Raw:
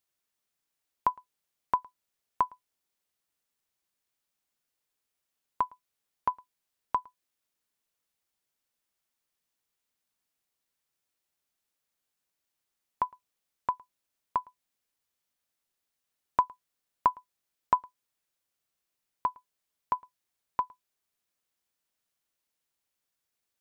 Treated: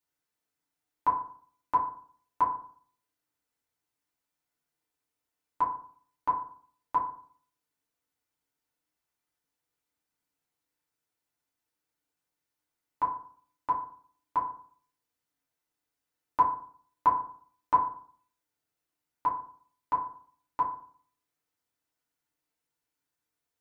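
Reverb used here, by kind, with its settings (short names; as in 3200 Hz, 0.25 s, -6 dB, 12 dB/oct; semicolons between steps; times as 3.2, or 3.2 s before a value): FDN reverb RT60 0.51 s, low-frequency decay 1.2×, high-frequency decay 0.35×, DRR -6 dB; gain -7 dB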